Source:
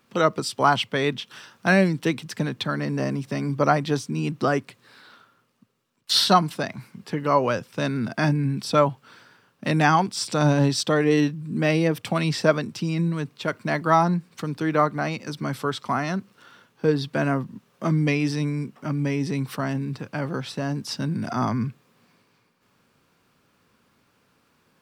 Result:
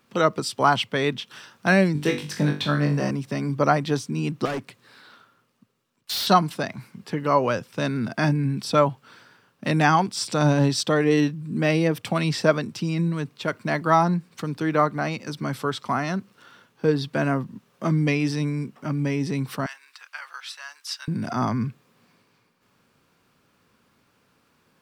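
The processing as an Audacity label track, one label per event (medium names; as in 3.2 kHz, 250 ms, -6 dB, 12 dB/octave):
1.930000	3.110000	flutter echo walls apart 3.5 m, dies away in 0.33 s
4.450000	6.270000	overload inside the chain gain 25.5 dB
19.660000	21.080000	high-pass 1.2 kHz 24 dB/octave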